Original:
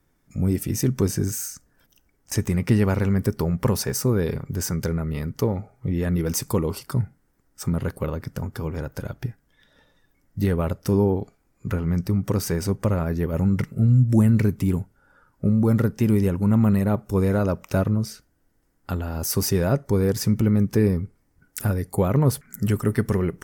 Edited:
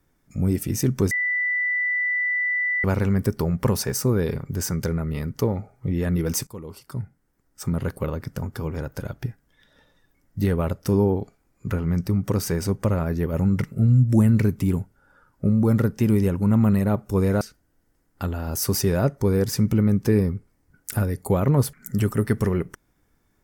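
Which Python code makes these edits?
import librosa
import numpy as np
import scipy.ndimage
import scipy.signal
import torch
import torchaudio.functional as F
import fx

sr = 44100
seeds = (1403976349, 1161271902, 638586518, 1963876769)

y = fx.edit(x, sr, fx.bleep(start_s=1.11, length_s=1.73, hz=1980.0, db=-20.5),
    fx.fade_in_from(start_s=6.47, length_s=1.4, floor_db=-18.5),
    fx.cut(start_s=17.41, length_s=0.68), tone=tone)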